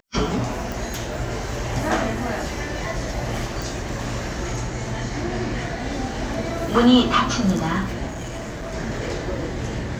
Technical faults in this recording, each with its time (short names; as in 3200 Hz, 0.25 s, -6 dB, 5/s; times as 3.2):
0.72 pop
3.62 pop
8.07–8.75 clipped -27.5 dBFS